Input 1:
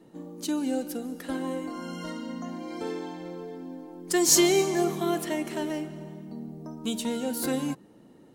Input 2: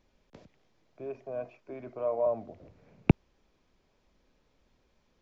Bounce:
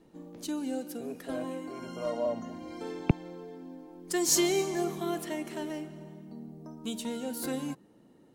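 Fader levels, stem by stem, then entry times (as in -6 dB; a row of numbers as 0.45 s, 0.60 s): -5.5 dB, -3.0 dB; 0.00 s, 0.00 s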